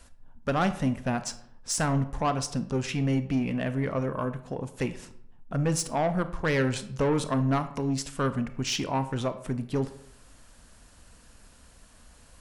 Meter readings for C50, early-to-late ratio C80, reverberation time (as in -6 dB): 13.5 dB, 16.5 dB, 0.70 s